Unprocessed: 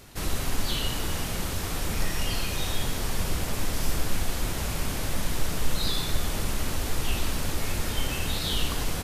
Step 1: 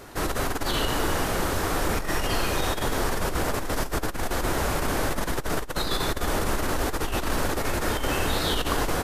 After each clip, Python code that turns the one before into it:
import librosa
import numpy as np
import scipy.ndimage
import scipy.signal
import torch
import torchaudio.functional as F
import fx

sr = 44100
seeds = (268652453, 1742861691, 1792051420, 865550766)

y = fx.band_shelf(x, sr, hz=710.0, db=8.5, octaves=3.0)
y = fx.over_compress(y, sr, threshold_db=-24.0, ratio=-0.5)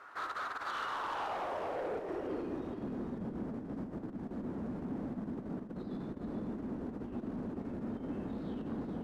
y = fx.filter_sweep_bandpass(x, sr, from_hz=1300.0, to_hz=220.0, start_s=0.81, end_s=2.76, q=3.6)
y = 10.0 ** (-34.5 / 20.0) * np.tanh(y / 10.0 ** (-34.5 / 20.0))
y = y + 10.0 ** (-7.0 / 20.0) * np.pad(y, (int(432 * sr / 1000.0), 0))[:len(y)]
y = y * librosa.db_to_amplitude(1.0)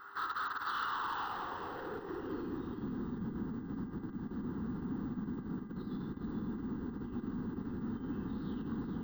y = fx.dmg_buzz(x, sr, base_hz=400.0, harmonics=5, level_db=-63.0, tilt_db=-4, odd_only=False)
y = fx.fixed_phaser(y, sr, hz=2300.0, stages=6)
y = np.repeat(scipy.signal.resample_poly(y, 1, 2), 2)[:len(y)]
y = y * librosa.db_to_amplitude(2.5)